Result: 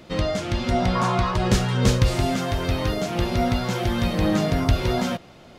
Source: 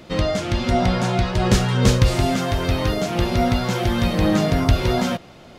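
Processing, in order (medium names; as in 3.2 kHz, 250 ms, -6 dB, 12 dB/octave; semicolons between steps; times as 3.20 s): 0.95–1.37 s: peaking EQ 1.1 kHz +15 dB 0.43 oct; trim -3 dB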